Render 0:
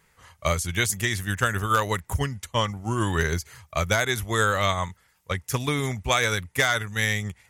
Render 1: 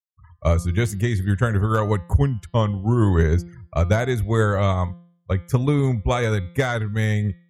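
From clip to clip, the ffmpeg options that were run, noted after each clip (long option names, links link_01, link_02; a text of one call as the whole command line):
ffmpeg -i in.wav -af "afftfilt=real='re*gte(hypot(re,im),0.00891)':imag='im*gte(hypot(re,im),0.00891)':win_size=1024:overlap=0.75,tiltshelf=frequency=970:gain=9.5,bandreject=frequency=172.9:width_type=h:width=4,bandreject=frequency=345.8:width_type=h:width=4,bandreject=frequency=518.7:width_type=h:width=4,bandreject=frequency=691.6:width_type=h:width=4,bandreject=frequency=864.5:width_type=h:width=4,bandreject=frequency=1037.4:width_type=h:width=4,bandreject=frequency=1210.3:width_type=h:width=4,bandreject=frequency=1383.2:width_type=h:width=4,bandreject=frequency=1556.1:width_type=h:width=4,bandreject=frequency=1729:width_type=h:width=4,bandreject=frequency=1901.9:width_type=h:width=4,bandreject=frequency=2074.8:width_type=h:width=4,bandreject=frequency=2247.7:width_type=h:width=4,bandreject=frequency=2420.6:width_type=h:width=4,bandreject=frequency=2593.5:width_type=h:width=4,bandreject=frequency=2766.4:width_type=h:width=4,bandreject=frequency=2939.3:width_type=h:width=4,bandreject=frequency=3112.2:width_type=h:width=4,bandreject=frequency=3285.1:width_type=h:width=4,bandreject=frequency=3458:width_type=h:width=4,bandreject=frequency=3630.9:width_type=h:width=4,bandreject=frequency=3803.8:width_type=h:width=4,bandreject=frequency=3976.7:width_type=h:width=4,bandreject=frequency=4149.6:width_type=h:width=4,bandreject=frequency=4322.5:width_type=h:width=4,bandreject=frequency=4495.4:width_type=h:width=4,bandreject=frequency=4668.3:width_type=h:width=4,bandreject=frequency=4841.2:width_type=h:width=4,bandreject=frequency=5014.1:width_type=h:width=4" out.wav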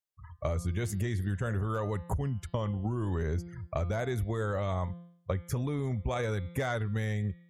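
ffmpeg -i in.wav -af "equalizer=frequency=590:width=1.4:gain=3,alimiter=limit=-14.5dB:level=0:latency=1:release=13,acompressor=threshold=-28dB:ratio=10" out.wav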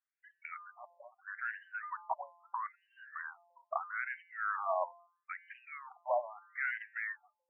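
ffmpeg -i in.wav -af "afftfilt=real='re*between(b*sr/1024,770*pow(2200/770,0.5+0.5*sin(2*PI*0.77*pts/sr))/1.41,770*pow(2200/770,0.5+0.5*sin(2*PI*0.77*pts/sr))*1.41)':imag='im*between(b*sr/1024,770*pow(2200/770,0.5+0.5*sin(2*PI*0.77*pts/sr))/1.41,770*pow(2200/770,0.5+0.5*sin(2*PI*0.77*pts/sr))*1.41)':win_size=1024:overlap=0.75,volume=5dB" out.wav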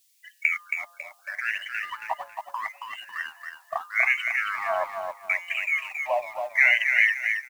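ffmpeg -i in.wav -filter_complex "[0:a]aexciter=amount=15.8:drive=7.4:freq=2300,aecho=1:1:274|548|822|1096:0.531|0.181|0.0614|0.0209,asplit=2[link_01][link_02];[link_02]aeval=exprs='sgn(val(0))*max(abs(val(0))-0.00531,0)':channel_layout=same,volume=-3.5dB[link_03];[link_01][link_03]amix=inputs=2:normalize=0,volume=2.5dB" out.wav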